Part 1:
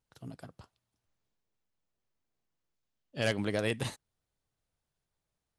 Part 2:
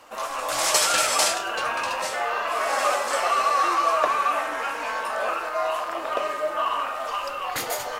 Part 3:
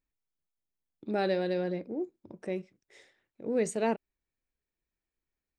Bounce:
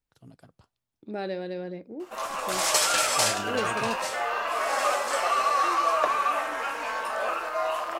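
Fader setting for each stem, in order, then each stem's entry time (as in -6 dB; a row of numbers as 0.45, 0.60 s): -5.5, -2.5, -3.5 dB; 0.00, 2.00, 0.00 s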